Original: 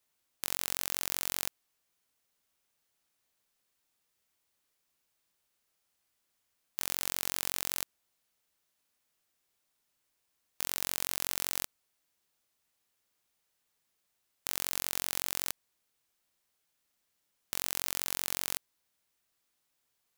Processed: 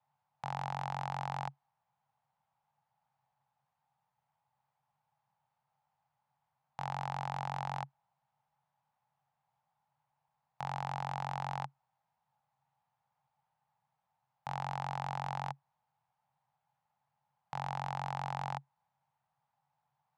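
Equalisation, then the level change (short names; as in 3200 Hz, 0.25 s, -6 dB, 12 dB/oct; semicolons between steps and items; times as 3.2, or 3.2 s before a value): double band-pass 340 Hz, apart 2.6 oct; air absorption 68 m; +17.5 dB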